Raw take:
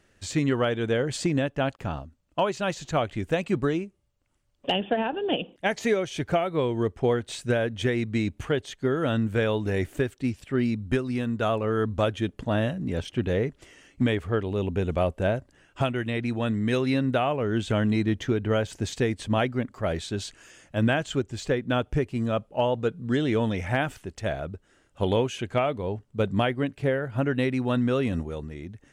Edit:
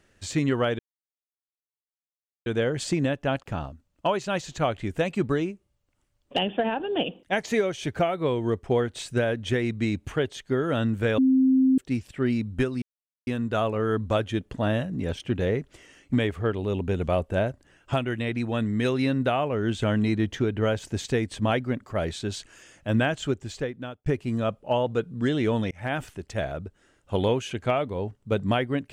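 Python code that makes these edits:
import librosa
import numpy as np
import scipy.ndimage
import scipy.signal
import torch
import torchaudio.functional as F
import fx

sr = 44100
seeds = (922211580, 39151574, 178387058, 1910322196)

y = fx.edit(x, sr, fx.insert_silence(at_s=0.79, length_s=1.67),
    fx.bleep(start_s=9.51, length_s=0.6, hz=262.0, db=-16.0),
    fx.insert_silence(at_s=11.15, length_s=0.45),
    fx.fade_out_span(start_s=21.23, length_s=0.71),
    fx.fade_in_span(start_s=23.59, length_s=0.29), tone=tone)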